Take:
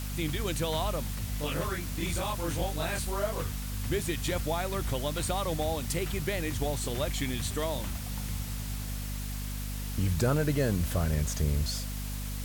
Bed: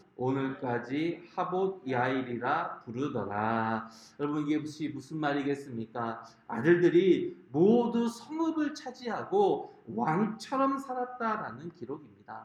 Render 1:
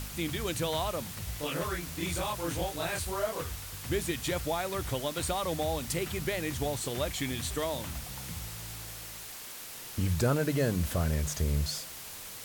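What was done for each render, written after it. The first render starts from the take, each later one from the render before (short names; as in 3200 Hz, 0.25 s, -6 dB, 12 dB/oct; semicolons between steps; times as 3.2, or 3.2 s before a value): de-hum 50 Hz, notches 5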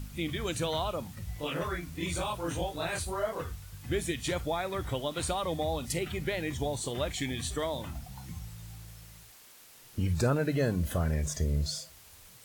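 noise print and reduce 11 dB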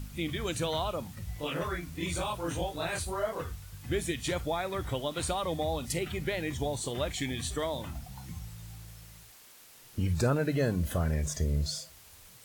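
nothing audible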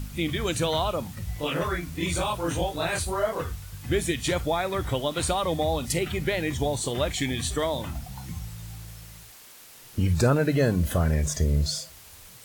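gain +6 dB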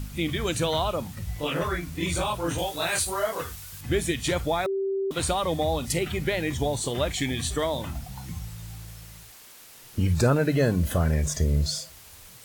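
2.58–3.81 tilt +2 dB/oct; 4.66–5.11 bleep 389 Hz -24 dBFS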